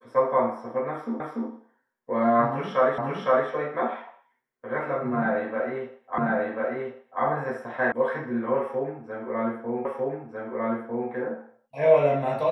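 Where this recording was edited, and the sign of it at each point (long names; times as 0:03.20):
0:01.20: the same again, the last 0.29 s
0:02.98: the same again, the last 0.51 s
0:06.18: the same again, the last 1.04 s
0:07.92: cut off before it has died away
0:09.85: the same again, the last 1.25 s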